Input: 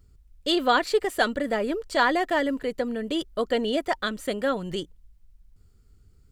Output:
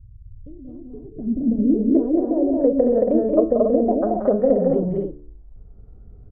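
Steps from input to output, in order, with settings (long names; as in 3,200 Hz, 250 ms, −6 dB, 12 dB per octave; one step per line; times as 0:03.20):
treble cut that deepens with the level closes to 300 Hz, closed at −22 dBFS
notch filter 360 Hz, Q 12
hum removal 73.04 Hz, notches 24
in parallel at −2.5 dB: downward compressor, threshold −38 dBFS, peak gain reduction 13 dB
on the sum: low-pass filter sweep 110 Hz → 660 Hz, 0:00.68–0:02.60
on a send: loudspeakers that aren't time-aligned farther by 62 metres −7 dB, 77 metres −2 dB, 96 metres −6 dB
on the sum: level +5 dB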